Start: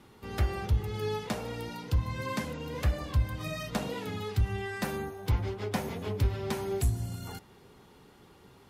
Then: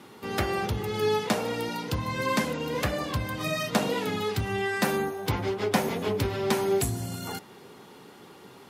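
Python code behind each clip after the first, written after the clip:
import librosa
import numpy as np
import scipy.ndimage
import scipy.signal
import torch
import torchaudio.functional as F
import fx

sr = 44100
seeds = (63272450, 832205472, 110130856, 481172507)

y = scipy.signal.sosfilt(scipy.signal.butter(2, 180.0, 'highpass', fs=sr, output='sos'), x)
y = y * librosa.db_to_amplitude(8.5)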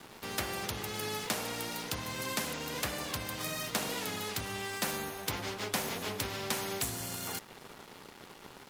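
y = np.sign(x) * np.maximum(np.abs(x) - 10.0 ** (-49.5 / 20.0), 0.0)
y = fx.spectral_comp(y, sr, ratio=2.0)
y = y * librosa.db_to_amplitude(-7.0)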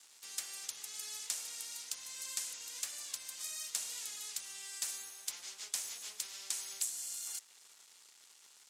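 y = fx.bandpass_q(x, sr, hz=7500.0, q=1.9)
y = y * librosa.db_to_amplitude(3.5)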